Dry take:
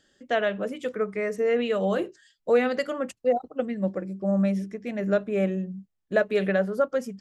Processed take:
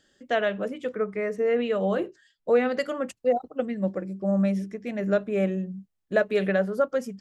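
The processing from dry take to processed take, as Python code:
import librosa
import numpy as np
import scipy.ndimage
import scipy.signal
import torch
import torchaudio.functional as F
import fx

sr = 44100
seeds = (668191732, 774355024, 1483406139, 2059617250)

y = fx.high_shelf(x, sr, hz=4100.0, db=-9.5, at=(0.68, 2.77))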